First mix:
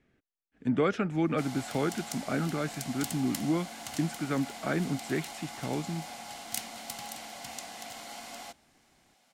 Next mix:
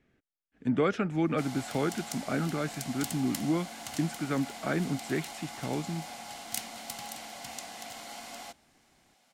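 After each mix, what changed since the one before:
none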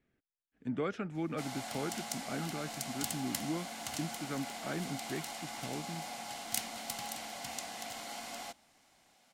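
speech -8.5 dB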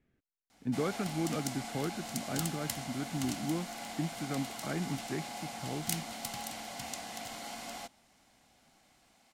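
background: entry -0.65 s; master: add low shelf 240 Hz +6.5 dB

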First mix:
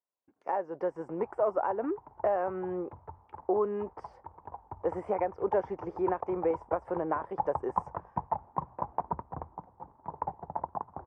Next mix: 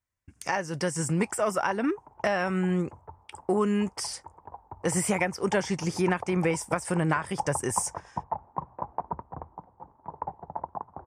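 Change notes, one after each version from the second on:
speech: remove Butterworth band-pass 590 Hz, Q 0.96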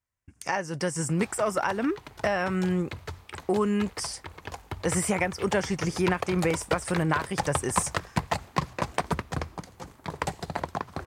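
background: remove ladder low-pass 980 Hz, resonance 70%

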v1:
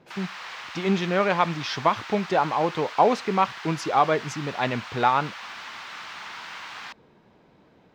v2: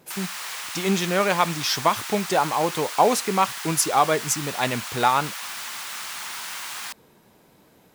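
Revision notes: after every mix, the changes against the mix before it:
master: remove air absorption 210 m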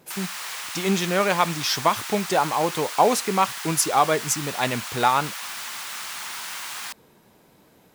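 none

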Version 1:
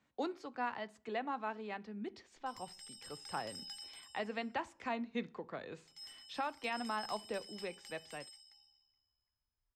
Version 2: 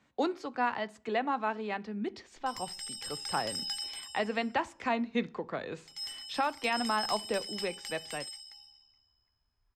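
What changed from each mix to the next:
speech +8.0 dB; background +12.0 dB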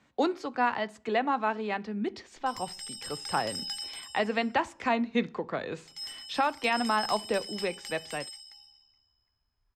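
speech +3.5 dB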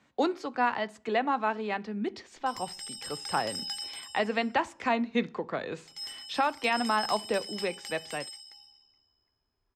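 background: add bell 370 Hz +10 dB 1.4 oct; master: add low shelf 77 Hz -6.5 dB

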